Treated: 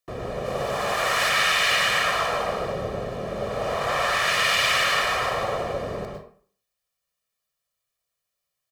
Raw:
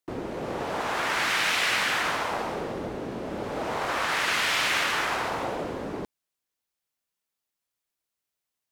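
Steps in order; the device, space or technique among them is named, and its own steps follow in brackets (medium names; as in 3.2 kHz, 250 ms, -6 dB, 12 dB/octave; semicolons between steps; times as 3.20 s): 0.45–1.29 s: treble shelf 5.7 kHz +6 dB; microphone above a desk (comb 1.7 ms, depth 69%; reverberation RT60 0.50 s, pre-delay 98 ms, DRR 2 dB)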